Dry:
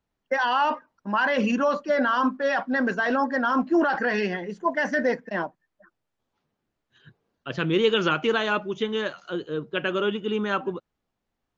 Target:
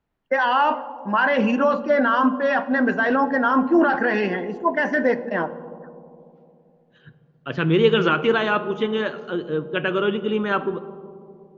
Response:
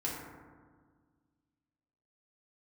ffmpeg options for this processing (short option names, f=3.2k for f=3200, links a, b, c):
-filter_complex "[0:a]bass=f=250:g=0,treble=f=4k:g=-10,asplit=2[a][b];[1:a]atrim=start_sample=2205,asetrate=23373,aresample=44100,lowpass=4.9k[c];[b][c]afir=irnorm=-1:irlink=0,volume=-17dB[d];[a][d]amix=inputs=2:normalize=0,volume=2.5dB"